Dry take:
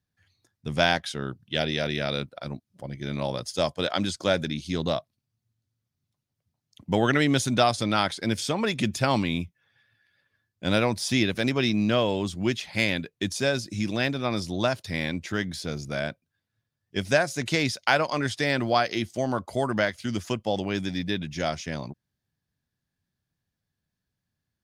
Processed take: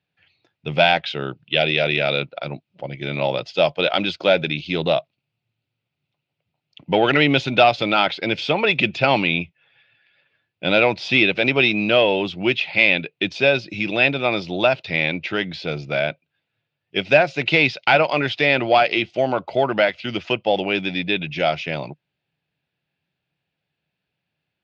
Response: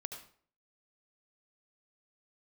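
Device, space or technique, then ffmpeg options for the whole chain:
overdrive pedal into a guitar cabinet: -filter_complex "[0:a]asplit=2[link_01][link_02];[link_02]highpass=frequency=720:poles=1,volume=14dB,asoftclip=type=tanh:threshold=-4.5dB[link_03];[link_01][link_03]amix=inputs=2:normalize=0,lowpass=frequency=2200:poles=1,volume=-6dB,highpass=80,equalizer=frequency=97:width_type=q:width=4:gain=-6,equalizer=frequency=150:width_type=q:width=4:gain=4,equalizer=frequency=230:width_type=q:width=4:gain=-7,equalizer=frequency=1100:width_type=q:width=4:gain=-9,equalizer=frequency=1700:width_type=q:width=4:gain=-8,equalizer=frequency=2600:width_type=q:width=4:gain=9,lowpass=frequency=4100:width=0.5412,lowpass=frequency=4100:width=1.3066,volume=4.5dB"

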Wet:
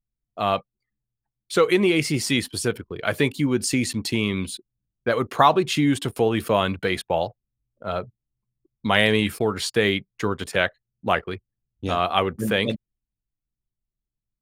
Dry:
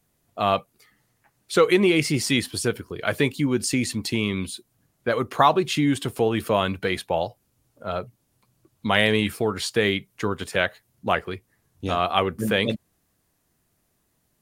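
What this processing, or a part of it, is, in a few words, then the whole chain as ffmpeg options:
voice memo with heavy noise removal: -af "anlmdn=0.1,dynaudnorm=framelen=430:gausssize=13:maxgain=11.5dB,volume=-1dB"

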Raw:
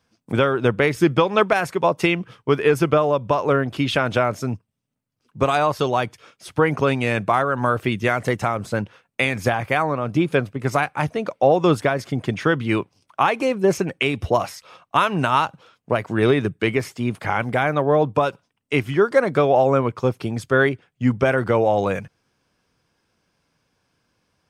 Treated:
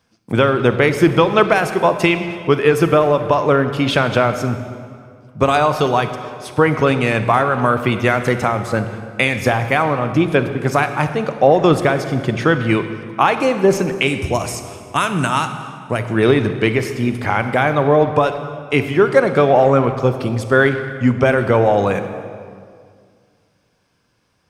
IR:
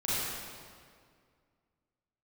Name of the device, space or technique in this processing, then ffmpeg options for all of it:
saturated reverb return: -filter_complex "[0:a]asettb=1/sr,asplit=3[link_01][link_02][link_03];[link_01]atrim=end=14.074[link_04];[link_02]atrim=start=14.07:end=15.99,asetpts=PTS-STARTPTS,afade=type=in:duration=0.004:curve=qsin,afade=type=out:start_time=1.916:duration=0.004:curve=qsin,equalizer=frequency=500:width_type=o:width=1:gain=-5,equalizer=frequency=1000:width_type=o:width=1:gain=-5,equalizer=frequency=4000:width_type=o:width=1:gain=-5,equalizer=frequency=8000:width_type=o:width=1:gain=12[link_05];[link_03]atrim=start=15.986[link_06];[link_04][link_05]acrossfade=duration=0.004:curve1=hsin:curve2=qsin[link_07];[link_07][link_06]acrossfade=duration=0.004:curve1=qsin:curve2=hsin,asplit=2[link_08][link_09];[1:a]atrim=start_sample=2205[link_10];[link_09][link_10]afir=irnorm=-1:irlink=0,asoftclip=type=tanh:threshold=-4.5dB,volume=-15dB[link_11];[link_08][link_11]amix=inputs=2:normalize=0,volume=3dB"

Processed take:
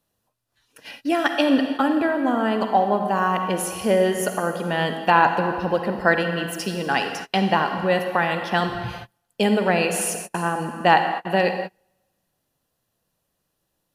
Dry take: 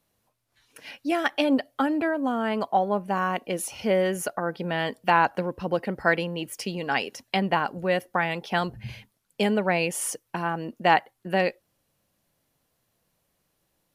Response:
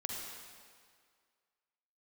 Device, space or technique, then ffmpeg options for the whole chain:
keyed gated reverb: -filter_complex "[0:a]asplit=3[link_01][link_02][link_03];[1:a]atrim=start_sample=2205[link_04];[link_02][link_04]afir=irnorm=-1:irlink=0[link_05];[link_03]apad=whole_len=615124[link_06];[link_05][link_06]sidechaingate=range=-33dB:threshold=-46dB:ratio=16:detection=peak,volume=1.5dB[link_07];[link_01][link_07]amix=inputs=2:normalize=0,bandreject=frequency=2200:width=7.8,volume=-2dB"

